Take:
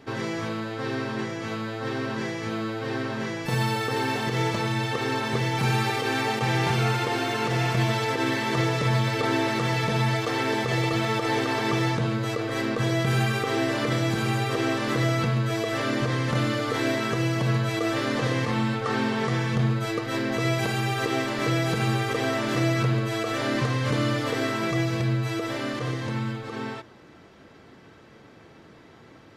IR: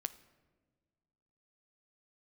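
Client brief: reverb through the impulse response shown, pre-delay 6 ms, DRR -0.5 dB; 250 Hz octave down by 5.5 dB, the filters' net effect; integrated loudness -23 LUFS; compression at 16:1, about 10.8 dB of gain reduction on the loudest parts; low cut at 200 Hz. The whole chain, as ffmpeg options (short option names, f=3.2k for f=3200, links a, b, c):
-filter_complex "[0:a]highpass=200,equalizer=f=250:t=o:g=-6,acompressor=threshold=-34dB:ratio=16,asplit=2[a][b];[1:a]atrim=start_sample=2205,adelay=6[c];[b][c]afir=irnorm=-1:irlink=0,volume=1.5dB[d];[a][d]amix=inputs=2:normalize=0,volume=10.5dB"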